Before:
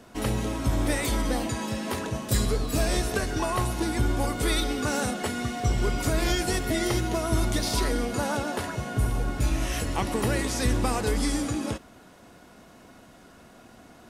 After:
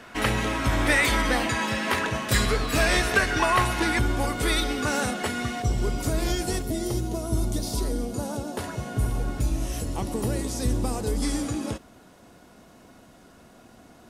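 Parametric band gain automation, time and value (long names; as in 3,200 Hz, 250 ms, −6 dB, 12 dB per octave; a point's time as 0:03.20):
parametric band 1,900 Hz 2.1 octaves
+12.5 dB
from 0:03.99 +4 dB
from 0:05.62 −5.5 dB
from 0:06.62 −14.5 dB
from 0:08.57 −3.5 dB
from 0:09.42 −11 dB
from 0:11.22 −2.5 dB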